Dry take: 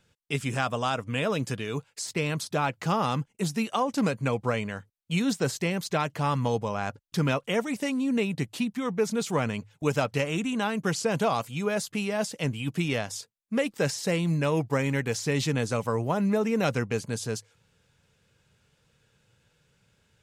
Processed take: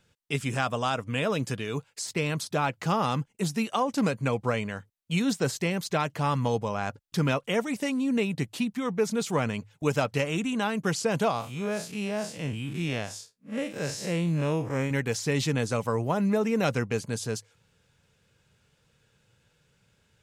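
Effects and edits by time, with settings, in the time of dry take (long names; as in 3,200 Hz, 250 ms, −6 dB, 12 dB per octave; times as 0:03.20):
0:11.31–0:14.91: spectrum smeared in time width 108 ms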